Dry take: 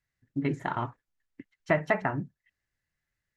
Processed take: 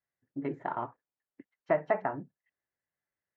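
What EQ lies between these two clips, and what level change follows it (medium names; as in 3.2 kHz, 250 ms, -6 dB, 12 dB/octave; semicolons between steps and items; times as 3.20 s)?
band-pass filter 640 Hz, Q 0.88; distance through air 76 m; 0.0 dB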